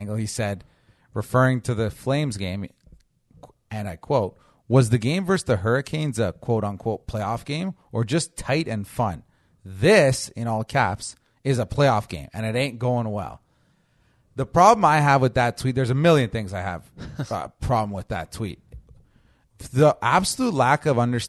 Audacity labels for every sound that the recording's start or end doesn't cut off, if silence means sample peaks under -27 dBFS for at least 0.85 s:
3.720000	13.330000	sound
14.390000	18.540000	sound